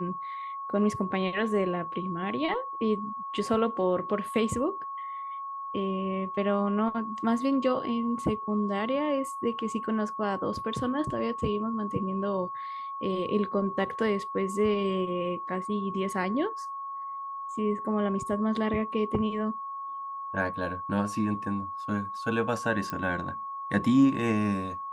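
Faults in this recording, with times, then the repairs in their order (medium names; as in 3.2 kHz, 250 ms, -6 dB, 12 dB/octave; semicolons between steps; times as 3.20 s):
whine 1.1 kHz -34 dBFS
22.90 s: pop -19 dBFS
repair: de-click; band-stop 1.1 kHz, Q 30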